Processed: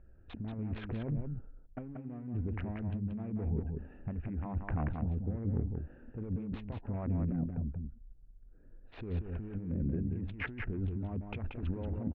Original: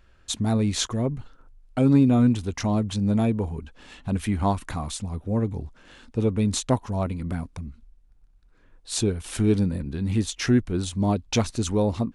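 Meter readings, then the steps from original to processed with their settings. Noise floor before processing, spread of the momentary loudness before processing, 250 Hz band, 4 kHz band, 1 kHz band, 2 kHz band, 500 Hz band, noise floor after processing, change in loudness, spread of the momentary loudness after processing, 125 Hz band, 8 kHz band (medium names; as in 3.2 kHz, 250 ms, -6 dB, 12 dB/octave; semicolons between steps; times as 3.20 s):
-57 dBFS, 12 LU, -14.5 dB, under -25 dB, -17.0 dB, -9.0 dB, -17.0 dB, -56 dBFS, -13.0 dB, 10 LU, -10.0 dB, under -40 dB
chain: local Wiener filter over 41 samples; compressor with a negative ratio -31 dBFS, ratio -1; steep low-pass 2.4 kHz 36 dB/octave; delay 182 ms -5 dB; trim -6 dB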